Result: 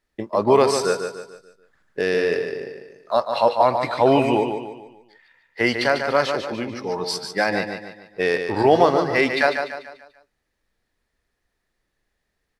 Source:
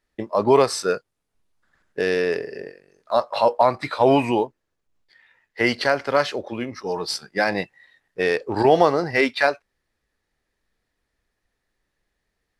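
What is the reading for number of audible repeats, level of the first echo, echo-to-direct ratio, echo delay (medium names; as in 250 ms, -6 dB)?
4, -7.0 dB, -6.0 dB, 146 ms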